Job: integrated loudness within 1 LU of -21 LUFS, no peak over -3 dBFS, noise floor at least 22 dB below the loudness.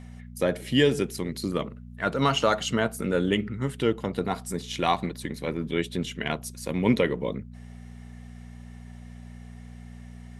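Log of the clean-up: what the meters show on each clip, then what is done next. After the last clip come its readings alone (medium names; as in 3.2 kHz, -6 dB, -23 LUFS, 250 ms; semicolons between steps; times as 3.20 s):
hum 60 Hz; highest harmonic 240 Hz; hum level -40 dBFS; loudness -27.5 LUFS; peak level -8.5 dBFS; loudness target -21.0 LUFS
-> de-hum 60 Hz, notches 4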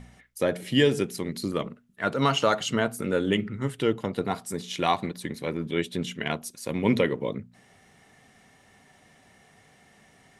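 hum not found; loudness -27.5 LUFS; peak level -8.5 dBFS; loudness target -21.0 LUFS
-> trim +6.5 dB; peak limiter -3 dBFS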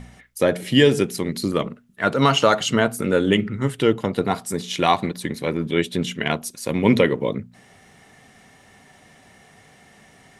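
loudness -21.0 LUFS; peak level -3.0 dBFS; noise floor -52 dBFS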